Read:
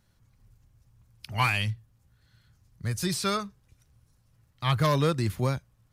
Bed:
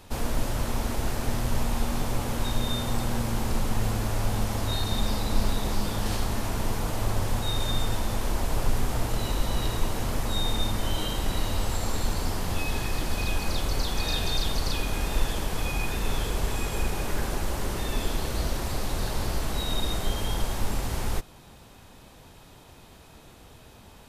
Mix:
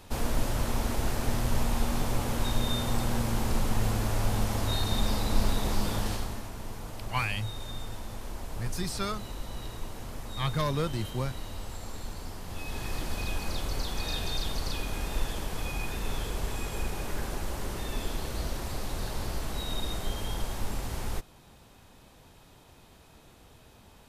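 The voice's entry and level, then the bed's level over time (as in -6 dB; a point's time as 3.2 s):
5.75 s, -5.5 dB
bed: 5.97 s -1 dB
6.51 s -11.5 dB
12.44 s -11.5 dB
12.91 s -5 dB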